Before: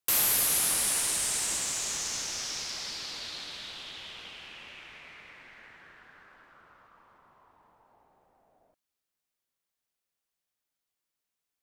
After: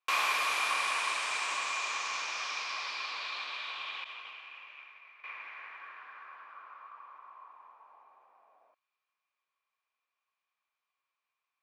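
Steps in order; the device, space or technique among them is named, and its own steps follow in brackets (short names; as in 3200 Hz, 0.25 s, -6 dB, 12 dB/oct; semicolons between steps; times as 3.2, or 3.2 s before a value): 4.04–5.24 expander -39 dBFS; tin-can telephone (BPF 700–3000 Hz; small resonant body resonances 1100/2400 Hz, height 14 dB, ringing for 25 ms); gain +3 dB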